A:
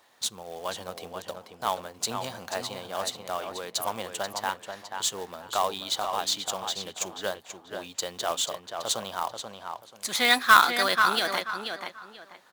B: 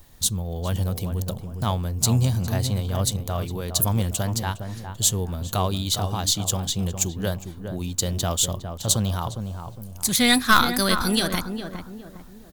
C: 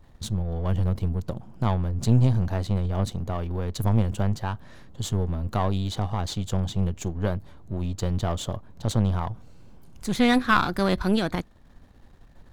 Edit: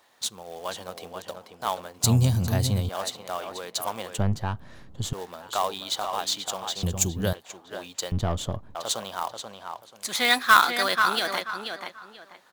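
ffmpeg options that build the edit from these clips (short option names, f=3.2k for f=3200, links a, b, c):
-filter_complex "[1:a]asplit=2[a][b];[2:a]asplit=2[c][d];[0:a]asplit=5[e][f][g][h][i];[e]atrim=end=2.042[j];[a]atrim=start=2.038:end=2.892[k];[f]atrim=start=2.888:end=4.182[l];[c]atrim=start=4.178:end=5.132[m];[g]atrim=start=5.128:end=6.832[n];[b]atrim=start=6.828:end=7.332[o];[h]atrim=start=7.328:end=8.122[p];[d]atrim=start=8.118:end=8.752[q];[i]atrim=start=8.748[r];[j][k]acrossfade=d=0.004:c1=hsin:c2=hsin[s];[s][l]acrossfade=d=0.004:c1=hsin:c2=hsin[t];[t][m]acrossfade=d=0.004:c1=hsin:c2=hsin[u];[u][n]acrossfade=d=0.004:c1=hsin:c2=hsin[v];[v][o]acrossfade=d=0.004:c1=hsin:c2=hsin[w];[w][p]acrossfade=d=0.004:c1=hsin:c2=hsin[x];[x][q]acrossfade=d=0.004:c1=hsin:c2=hsin[y];[y][r]acrossfade=d=0.004:c1=hsin:c2=hsin"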